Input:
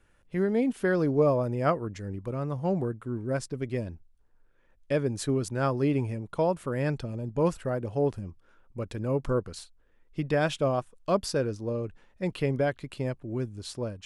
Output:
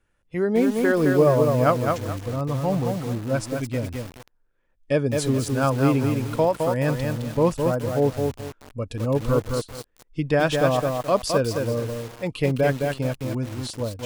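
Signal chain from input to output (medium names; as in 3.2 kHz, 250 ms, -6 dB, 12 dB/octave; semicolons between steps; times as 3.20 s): spectral noise reduction 11 dB; bit-crushed delay 213 ms, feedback 35%, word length 7-bit, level -3.5 dB; trim +5.5 dB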